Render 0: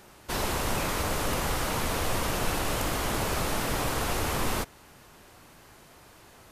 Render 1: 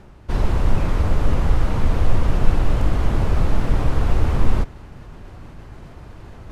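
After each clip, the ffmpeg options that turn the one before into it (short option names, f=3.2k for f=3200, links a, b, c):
-af "aemphasis=mode=reproduction:type=riaa,areverse,acompressor=mode=upward:threshold=-29dB:ratio=2.5,areverse"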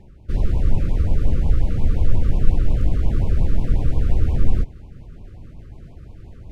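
-af "lowshelf=f=350:g=9,afftfilt=real='re*(1-between(b*sr/1024,760*pow(1600/760,0.5+0.5*sin(2*PI*5.6*pts/sr))/1.41,760*pow(1600/760,0.5+0.5*sin(2*PI*5.6*pts/sr))*1.41))':imag='im*(1-between(b*sr/1024,760*pow(1600/760,0.5+0.5*sin(2*PI*5.6*pts/sr))/1.41,760*pow(1600/760,0.5+0.5*sin(2*PI*5.6*pts/sr))*1.41))':win_size=1024:overlap=0.75,volume=-8.5dB"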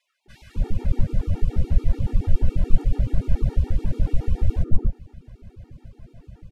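-filter_complex "[0:a]acrossover=split=1200[a][b];[a]adelay=260[c];[c][b]amix=inputs=2:normalize=0,afftfilt=real='re*gt(sin(2*PI*7*pts/sr)*(1-2*mod(floor(b*sr/1024/240),2)),0)':imag='im*gt(sin(2*PI*7*pts/sr)*(1-2*mod(floor(b*sr/1024/240),2)),0)':win_size=1024:overlap=0.75"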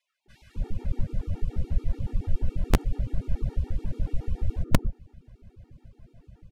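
-af "aeval=exprs='(mod(1.5*val(0)+1,2)-1)/1.5':c=same,volume=-7dB"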